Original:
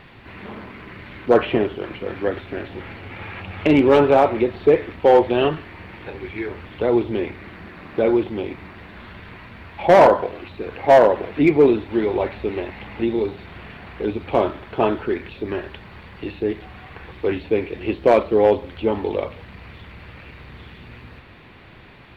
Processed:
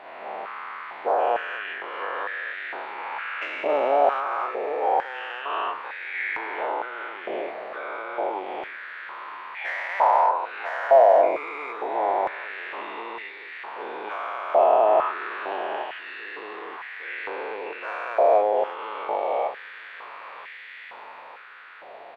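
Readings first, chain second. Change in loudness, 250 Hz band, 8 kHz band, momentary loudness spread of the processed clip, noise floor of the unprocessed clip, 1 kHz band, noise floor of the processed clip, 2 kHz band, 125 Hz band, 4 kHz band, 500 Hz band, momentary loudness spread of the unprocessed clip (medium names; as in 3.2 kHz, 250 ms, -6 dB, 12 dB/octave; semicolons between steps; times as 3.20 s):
-6.0 dB, -21.0 dB, no reading, 20 LU, -44 dBFS, +0.5 dB, -43 dBFS, +0.5 dB, under -30 dB, -5.5 dB, -6.0 dB, 23 LU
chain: every event in the spectrogram widened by 480 ms; treble shelf 2.5 kHz -10 dB; compression 6:1, threshold -16 dBFS, peak gain reduction 13 dB; feedback delay 972 ms, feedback 56%, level -18 dB; step-sequenced high-pass 2.2 Hz 670–1900 Hz; trim -5 dB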